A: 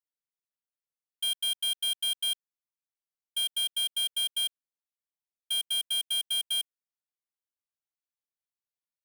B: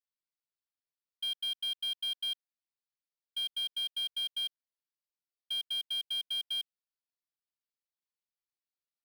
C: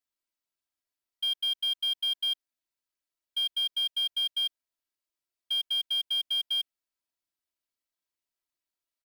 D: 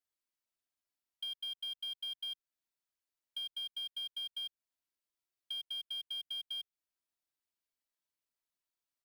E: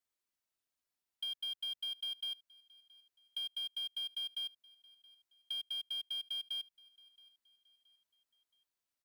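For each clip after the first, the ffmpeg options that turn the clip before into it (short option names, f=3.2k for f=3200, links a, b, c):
-af "highshelf=f=6k:t=q:w=3:g=-7.5,volume=-7dB"
-af "aecho=1:1:3.1:0.63,volume=2dB"
-filter_complex "[0:a]acrossover=split=170[a][b];[b]acompressor=threshold=-40dB:ratio=2.5[c];[a][c]amix=inputs=2:normalize=0,volume=-3.5dB"
-af "aecho=1:1:673|1346|2019:0.0708|0.029|0.0119,volume=1dB"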